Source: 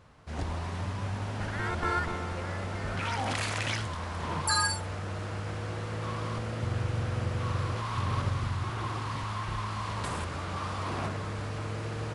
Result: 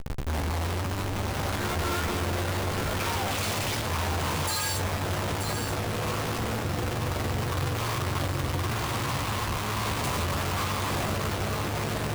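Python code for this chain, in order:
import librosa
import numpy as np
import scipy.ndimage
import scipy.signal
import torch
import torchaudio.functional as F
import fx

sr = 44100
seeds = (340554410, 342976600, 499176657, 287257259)

p1 = fx.peak_eq(x, sr, hz=1700.0, db=-7.0, octaves=0.76)
p2 = fx.over_compress(p1, sr, threshold_db=-36.0, ratio=-1.0)
p3 = p1 + (p2 * librosa.db_to_amplitude(-2.0))
p4 = fx.schmitt(p3, sr, flips_db=-44.5)
p5 = fx.doubler(p4, sr, ms=14.0, db=-8.0)
y = p5 + 10.0 ** (-7.0 / 20.0) * np.pad(p5, (int(931 * sr / 1000.0), 0))[:len(p5)]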